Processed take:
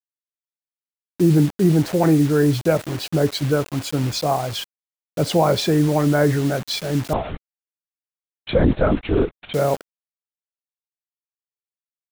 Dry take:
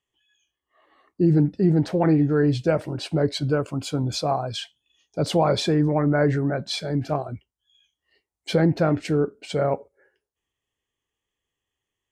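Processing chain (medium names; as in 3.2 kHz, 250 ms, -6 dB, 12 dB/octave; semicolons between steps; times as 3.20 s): bit crusher 6-bit; 7.13–9.54 s: LPC vocoder at 8 kHz whisper; trim +3 dB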